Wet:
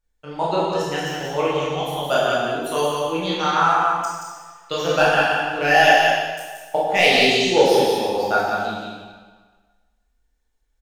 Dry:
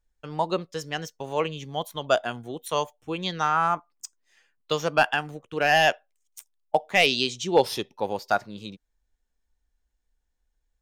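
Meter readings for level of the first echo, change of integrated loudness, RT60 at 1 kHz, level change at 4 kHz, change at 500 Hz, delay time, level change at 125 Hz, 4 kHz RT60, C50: -4.0 dB, +6.5 dB, 1.5 s, +6.5 dB, +7.5 dB, 0.177 s, +5.0 dB, 1.3 s, -3.0 dB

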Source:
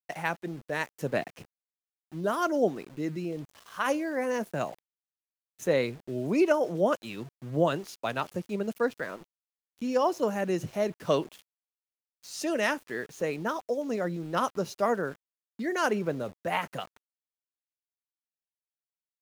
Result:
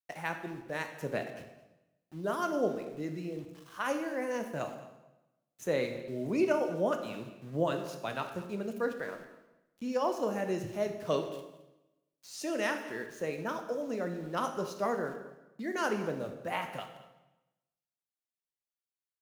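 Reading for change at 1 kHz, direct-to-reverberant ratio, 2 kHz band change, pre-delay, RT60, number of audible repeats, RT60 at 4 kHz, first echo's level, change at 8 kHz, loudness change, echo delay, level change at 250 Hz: -4.5 dB, 5.5 dB, -4.5 dB, 19 ms, 0.95 s, 1, 0.85 s, -18.5 dB, -4.5 dB, -4.5 dB, 0.216 s, -4.5 dB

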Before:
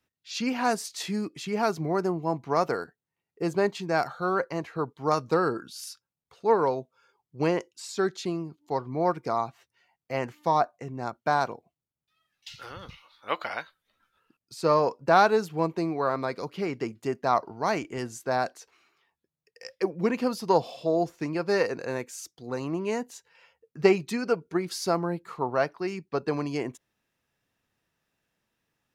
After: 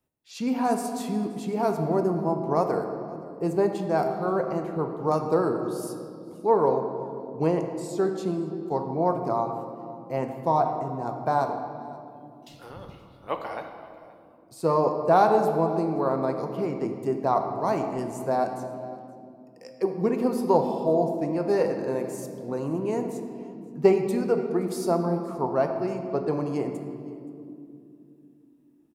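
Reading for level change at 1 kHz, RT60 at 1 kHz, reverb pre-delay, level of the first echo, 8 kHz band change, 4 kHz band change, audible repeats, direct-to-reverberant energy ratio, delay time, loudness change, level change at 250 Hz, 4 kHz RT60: +1.0 dB, 2.2 s, 5 ms, -22.0 dB, n/a, -8.0 dB, 1, 4.5 dB, 0.524 s, +2.0 dB, +3.5 dB, 1.6 s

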